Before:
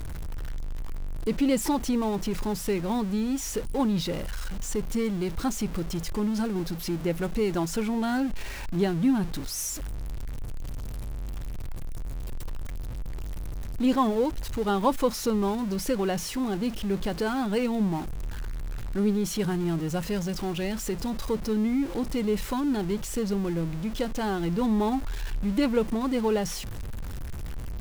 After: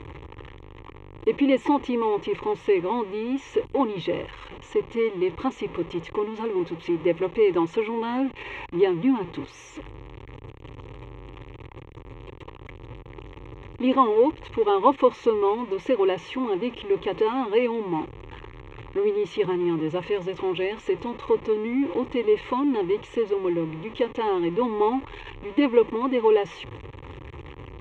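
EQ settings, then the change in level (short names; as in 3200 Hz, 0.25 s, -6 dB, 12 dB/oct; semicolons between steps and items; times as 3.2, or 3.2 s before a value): BPF 140–5400 Hz; air absorption 180 m; fixed phaser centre 1000 Hz, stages 8; +8.5 dB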